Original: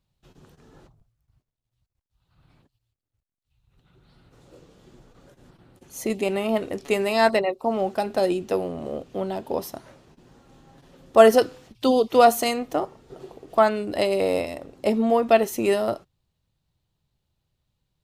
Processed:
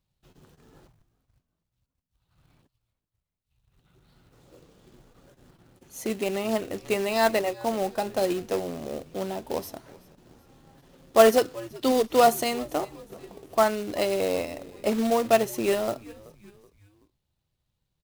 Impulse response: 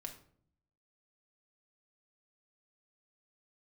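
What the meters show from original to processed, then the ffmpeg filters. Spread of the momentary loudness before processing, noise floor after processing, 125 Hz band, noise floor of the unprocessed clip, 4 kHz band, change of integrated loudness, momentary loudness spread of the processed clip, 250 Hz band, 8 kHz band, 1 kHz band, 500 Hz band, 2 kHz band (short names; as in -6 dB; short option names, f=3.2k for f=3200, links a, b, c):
14 LU, -82 dBFS, -2.5 dB, -82 dBFS, -1.5 dB, -3.0 dB, 15 LU, -3.5 dB, +1.0 dB, -3.5 dB, -3.5 dB, -3.0 dB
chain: -filter_complex "[0:a]acrusher=bits=3:mode=log:mix=0:aa=0.000001,asplit=4[a][b][c][d];[b]adelay=378,afreqshift=-100,volume=-21.5dB[e];[c]adelay=756,afreqshift=-200,volume=-28.1dB[f];[d]adelay=1134,afreqshift=-300,volume=-34.6dB[g];[a][e][f][g]amix=inputs=4:normalize=0,volume=-3.5dB"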